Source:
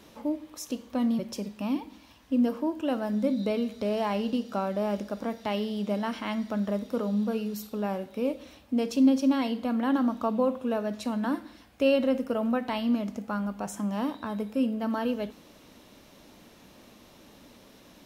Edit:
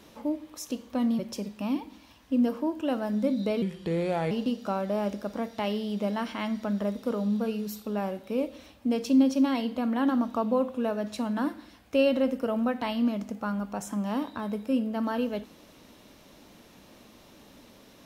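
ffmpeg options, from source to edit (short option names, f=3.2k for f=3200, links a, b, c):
-filter_complex "[0:a]asplit=3[a][b][c];[a]atrim=end=3.624[d];[b]atrim=start=3.62:end=4.18,asetpts=PTS-STARTPTS,asetrate=35721,aresample=44100[e];[c]atrim=start=4.176[f];[d][e]acrossfade=d=0.004:c1=hsin:c2=hsin[g];[g][f]acrossfade=d=0.004:c1=hsin:c2=hsin"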